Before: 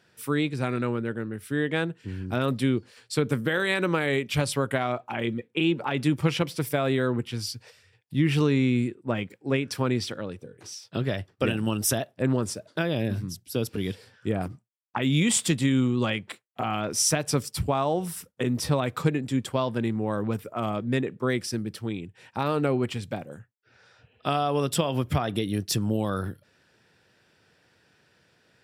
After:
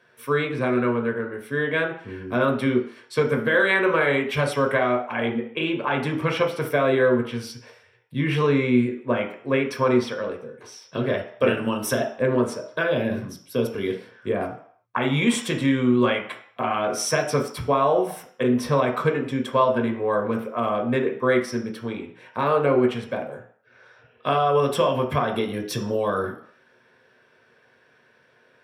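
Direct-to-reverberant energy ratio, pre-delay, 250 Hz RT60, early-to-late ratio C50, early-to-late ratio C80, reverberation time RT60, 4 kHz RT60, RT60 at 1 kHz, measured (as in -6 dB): 2.0 dB, 3 ms, 0.40 s, 9.0 dB, 12.5 dB, 0.60 s, 0.55 s, 0.65 s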